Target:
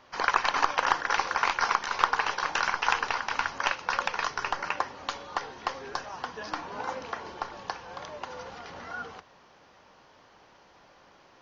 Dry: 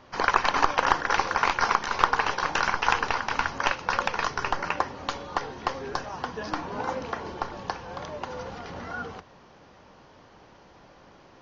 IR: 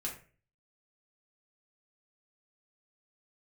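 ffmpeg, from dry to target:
-af "lowshelf=f=450:g=-10,volume=0.891"

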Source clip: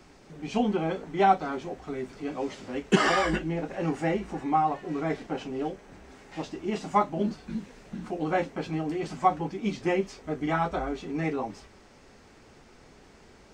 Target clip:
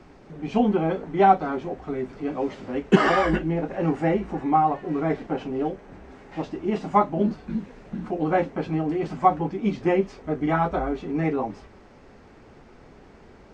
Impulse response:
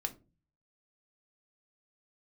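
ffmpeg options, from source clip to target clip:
-af "lowpass=f=1500:p=1,volume=1.88"

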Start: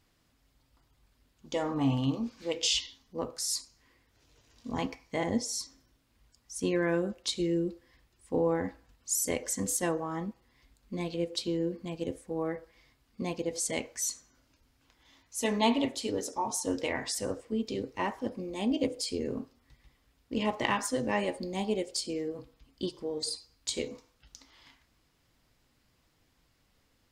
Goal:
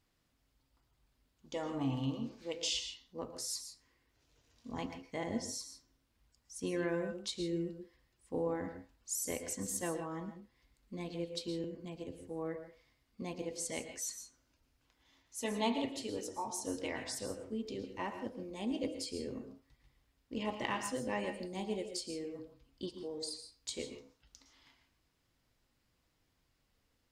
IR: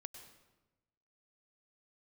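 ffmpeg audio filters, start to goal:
-filter_complex "[0:a]asettb=1/sr,asplit=3[s0][s1][s2];[s0]atrim=end=11.644[s3];[s1]atrim=start=11.64:end=12.21,asetpts=PTS-STARTPTS,afade=t=in:d=0.004:c=qsin,afade=t=out:st=0.566:d=0.004:c=qsin,acrossover=split=230[s4][s5];[s5]acompressor=threshold=0.0178:ratio=6[s6];[s4][s6]amix=inputs=2:normalize=0[s7];[s2]atrim=start=12.206[s8];[s3][s7]acrossfade=d=0.004:c1=hsin:c2=qsin[s9];[s9][s8]acrossfade=d=0.004:c1=qsin:c2=hsin[s10];[1:a]atrim=start_sample=2205,afade=t=out:st=0.2:d=0.01,atrim=end_sample=9261,asetrate=38367,aresample=44100[s11];[s10][s11]afir=irnorm=-1:irlink=0,volume=0.75"

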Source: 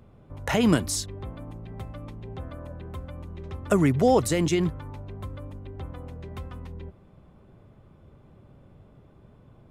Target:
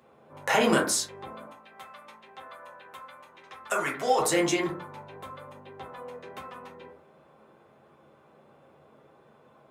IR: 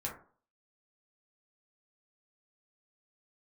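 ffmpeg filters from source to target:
-filter_complex "[0:a]asetnsamples=n=441:p=0,asendcmd='1.46 highpass f 970;4.19 highpass f 460',highpass=450[s0];[1:a]atrim=start_sample=2205[s1];[s0][s1]afir=irnorm=-1:irlink=0,volume=1.5"

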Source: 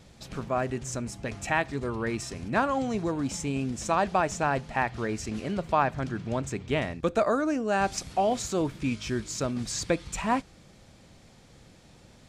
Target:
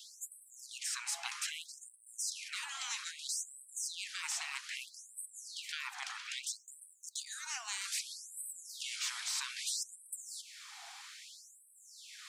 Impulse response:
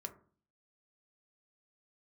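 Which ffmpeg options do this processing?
-filter_complex "[0:a]acrossover=split=1500|6500[s0][s1][s2];[s0]acompressor=threshold=0.01:ratio=4[s3];[s1]acompressor=threshold=0.00708:ratio=4[s4];[s2]acompressor=threshold=0.00501:ratio=4[s5];[s3][s4][s5]amix=inputs=3:normalize=0,afftfilt=real='re*lt(hypot(re,im),0.0158)':imag='im*lt(hypot(re,im),0.0158)':win_size=1024:overlap=0.75,afftfilt=real='re*gte(b*sr/1024,680*pow(8000/680,0.5+0.5*sin(2*PI*0.62*pts/sr)))':imag='im*gte(b*sr/1024,680*pow(8000/680,0.5+0.5*sin(2*PI*0.62*pts/sr)))':win_size=1024:overlap=0.75,volume=3.35"

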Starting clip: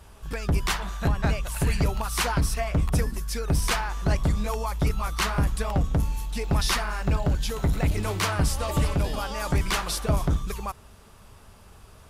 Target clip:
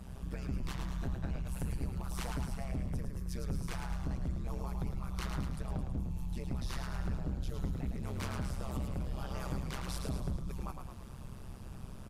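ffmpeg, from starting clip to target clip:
-filter_complex "[0:a]lowshelf=f=390:g=10,acompressor=threshold=0.0282:ratio=6,tremolo=f=130:d=0.947,asplit=2[s0][s1];[s1]asplit=7[s2][s3][s4][s5][s6][s7][s8];[s2]adelay=108,afreqshift=-36,volume=0.531[s9];[s3]adelay=216,afreqshift=-72,volume=0.299[s10];[s4]adelay=324,afreqshift=-108,volume=0.166[s11];[s5]adelay=432,afreqshift=-144,volume=0.0933[s12];[s6]adelay=540,afreqshift=-180,volume=0.0525[s13];[s7]adelay=648,afreqshift=-216,volume=0.0292[s14];[s8]adelay=756,afreqshift=-252,volume=0.0164[s15];[s9][s10][s11][s12][s13][s14][s15]amix=inputs=7:normalize=0[s16];[s0][s16]amix=inputs=2:normalize=0,volume=0.794"

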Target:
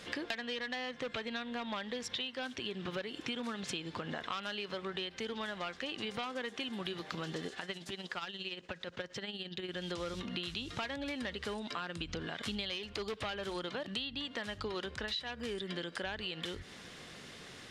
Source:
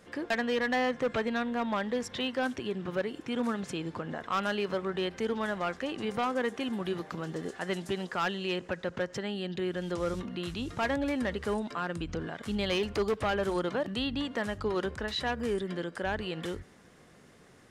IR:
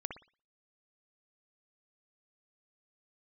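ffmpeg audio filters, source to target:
-filter_complex "[0:a]equalizer=f=3600:t=o:w=1.7:g=13,acompressor=threshold=0.0112:ratio=16,asettb=1/sr,asplit=3[s0][s1][s2];[s0]atrim=end=7.474[s3];[s1]atrim=start=7.47:end=9.69,asetpts=PTS-STARTPTS,afade=t=in:d=0.004:c=qsin,afade=t=out:st=2.216:d=0.004:c=qsin,tremolo=f=17:d=0.57[s4];[s2]atrim=start=9.686[s5];[s3][s4]acrossfade=d=0.004:c1=hsin:c2=qsin[s6];[s6][s5]acrossfade=d=0.004:c1=qsin:c2=hsin,volume=1.5"

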